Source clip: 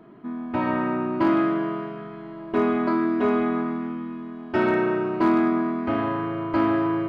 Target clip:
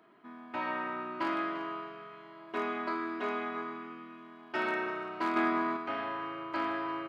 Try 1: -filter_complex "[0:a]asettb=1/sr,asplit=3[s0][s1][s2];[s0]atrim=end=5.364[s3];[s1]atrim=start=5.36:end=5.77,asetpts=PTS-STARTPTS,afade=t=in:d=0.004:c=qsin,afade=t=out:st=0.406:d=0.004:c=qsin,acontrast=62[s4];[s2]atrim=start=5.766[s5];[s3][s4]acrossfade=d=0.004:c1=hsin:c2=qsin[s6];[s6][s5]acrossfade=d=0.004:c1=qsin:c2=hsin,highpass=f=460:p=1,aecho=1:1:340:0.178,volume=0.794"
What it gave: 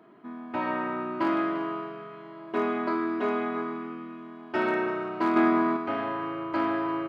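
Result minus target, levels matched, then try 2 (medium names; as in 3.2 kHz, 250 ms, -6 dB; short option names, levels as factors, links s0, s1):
2 kHz band -4.0 dB
-filter_complex "[0:a]asettb=1/sr,asplit=3[s0][s1][s2];[s0]atrim=end=5.364[s3];[s1]atrim=start=5.36:end=5.77,asetpts=PTS-STARTPTS,afade=t=in:d=0.004:c=qsin,afade=t=out:st=0.406:d=0.004:c=qsin,acontrast=62[s4];[s2]atrim=start=5.766[s5];[s3][s4]acrossfade=d=0.004:c1=hsin:c2=qsin[s6];[s6][s5]acrossfade=d=0.004:c1=qsin:c2=hsin,highpass=f=1600:p=1,aecho=1:1:340:0.178,volume=0.794"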